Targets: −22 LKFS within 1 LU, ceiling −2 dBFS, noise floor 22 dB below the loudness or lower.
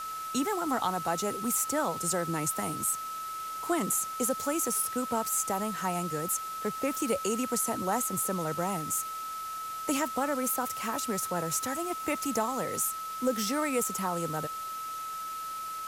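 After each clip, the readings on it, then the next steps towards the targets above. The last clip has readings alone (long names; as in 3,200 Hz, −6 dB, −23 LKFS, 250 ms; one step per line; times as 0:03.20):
interfering tone 1,300 Hz; level of the tone −35 dBFS; background noise floor −38 dBFS; target noise floor −53 dBFS; integrated loudness −30.5 LKFS; sample peak −16.0 dBFS; target loudness −22.0 LKFS
→ notch filter 1,300 Hz, Q 30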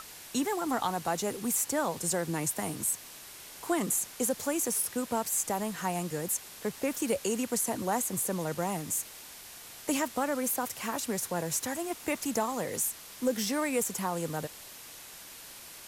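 interfering tone none found; background noise floor −48 dBFS; target noise floor −53 dBFS
→ broadband denoise 6 dB, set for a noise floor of −48 dBFS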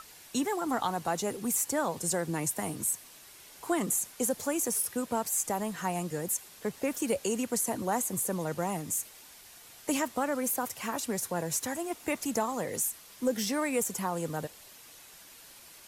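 background noise floor −53 dBFS; target noise floor −54 dBFS
→ broadband denoise 6 dB, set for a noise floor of −53 dBFS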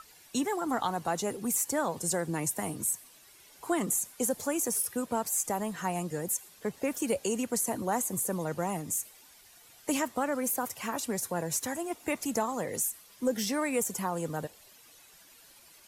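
background noise floor −57 dBFS; integrated loudness −31.5 LKFS; sample peak −15.5 dBFS; target loudness −22.0 LKFS
→ level +9.5 dB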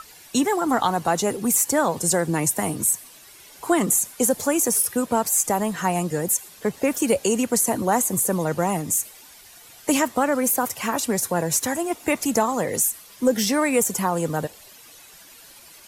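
integrated loudness −22.0 LKFS; sample peak −6.0 dBFS; background noise floor −47 dBFS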